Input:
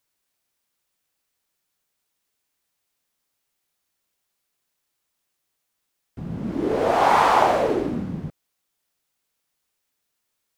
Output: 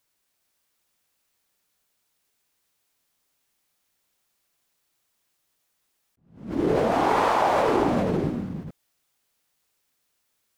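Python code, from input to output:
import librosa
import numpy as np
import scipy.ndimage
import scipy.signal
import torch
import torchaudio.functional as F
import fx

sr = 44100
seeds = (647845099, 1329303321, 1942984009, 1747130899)

p1 = fx.over_compress(x, sr, threshold_db=-23.0, ratio=-0.5)
p2 = x + F.gain(torch.from_numpy(p1), 2.5).numpy()
p3 = p2 + 10.0 ** (-4.5 / 20.0) * np.pad(p2, (int(406 * sr / 1000.0), 0))[:len(p2)]
p4 = fx.attack_slew(p3, sr, db_per_s=120.0)
y = F.gain(torch.from_numpy(p4), -7.5).numpy()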